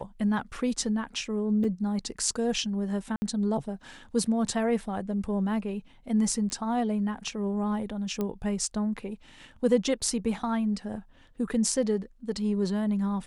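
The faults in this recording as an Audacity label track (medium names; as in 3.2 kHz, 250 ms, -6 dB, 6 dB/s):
1.640000	1.640000	dropout 4.3 ms
3.160000	3.220000	dropout 60 ms
6.500000	6.500000	pop -21 dBFS
8.210000	8.210000	pop -18 dBFS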